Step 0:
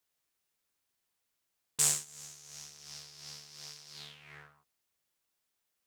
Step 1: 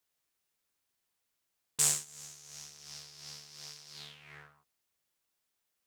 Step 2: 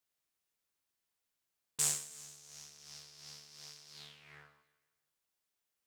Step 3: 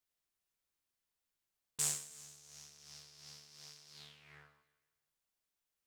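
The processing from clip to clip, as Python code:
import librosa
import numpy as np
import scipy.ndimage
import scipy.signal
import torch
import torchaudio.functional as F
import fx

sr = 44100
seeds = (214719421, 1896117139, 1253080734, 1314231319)

y1 = x
y2 = fx.echo_feedback(y1, sr, ms=159, feedback_pct=46, wet_db=-17.5)
y2 = F.gain(torch.from_numpy(y2), -4.5).numpy()
y3 = fx.low_shelf(y2, sr, hz=73.0, db=9.5)
y3 = F.gain(torch.from_numpy(y3), -3.0).numpy()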